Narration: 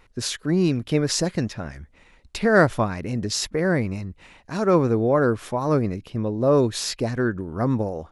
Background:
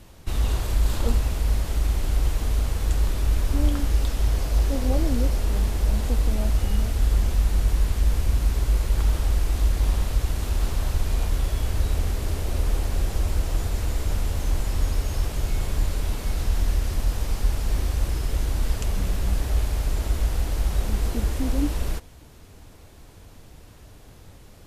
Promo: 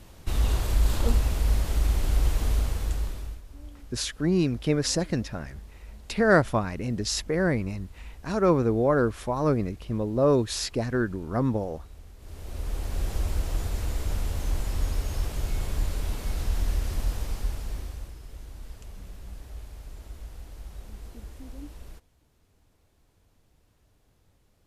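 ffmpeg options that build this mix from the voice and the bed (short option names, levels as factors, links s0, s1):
-filter_complex "[0:a]adelay=3750,volume=0.708[s0];[1:a]volume=7.94,afade=t=out:st=2.5:d=0.91:silence=0.0794328,afade=t=in:st=12.18:d=0.94:silence=0.112202,afade=t=out:st=17.05:d=1.1:silence=0.199526[s1];[s0][s1]amix=inputs=2:normalize=0"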